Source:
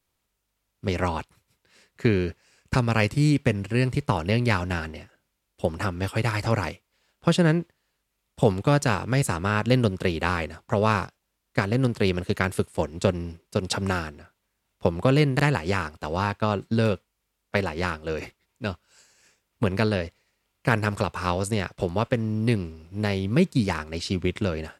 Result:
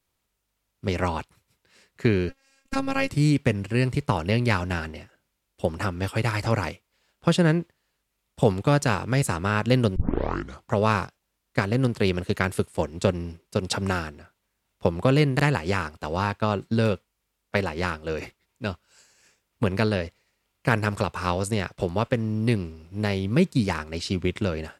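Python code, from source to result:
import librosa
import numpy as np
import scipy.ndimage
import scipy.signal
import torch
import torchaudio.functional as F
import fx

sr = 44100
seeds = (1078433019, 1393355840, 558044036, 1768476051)

y = fx.robotise(x, sr, hz=270.0, at=(2.29, 3.1))
y = fx.edit(y, sr, fx.tape_start(start_s=9.96, length_s=0.68), tone=tone)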